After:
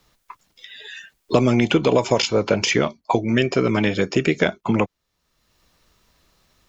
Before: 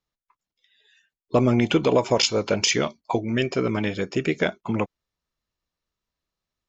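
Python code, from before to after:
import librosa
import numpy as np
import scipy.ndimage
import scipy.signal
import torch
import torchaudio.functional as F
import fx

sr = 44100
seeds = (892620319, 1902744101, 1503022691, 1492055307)

y = fx.band_squash(x, sr, depth_pct=70)
y = y * librosa.db_to_amplitude(3.5)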